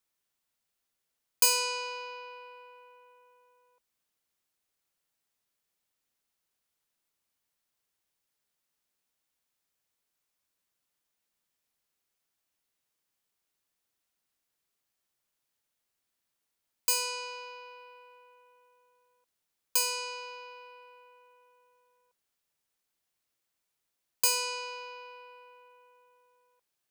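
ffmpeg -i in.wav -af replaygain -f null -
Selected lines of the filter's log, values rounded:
track_gain = +19.0 dB
track_peak = 0.239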